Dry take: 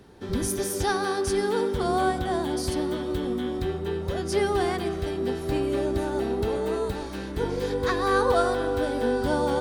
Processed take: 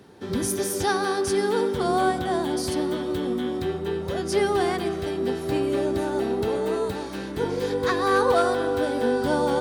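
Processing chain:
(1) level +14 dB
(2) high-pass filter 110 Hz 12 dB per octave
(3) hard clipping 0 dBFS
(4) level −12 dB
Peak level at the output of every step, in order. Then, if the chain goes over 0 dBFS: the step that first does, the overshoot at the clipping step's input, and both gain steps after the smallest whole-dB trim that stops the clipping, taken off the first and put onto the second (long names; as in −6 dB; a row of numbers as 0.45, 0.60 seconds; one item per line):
+4.5, +4.5, 0.0, −12.0 dBFS
step 1, 4.5 dB
step 1 +9 dB, step 4 −7 dB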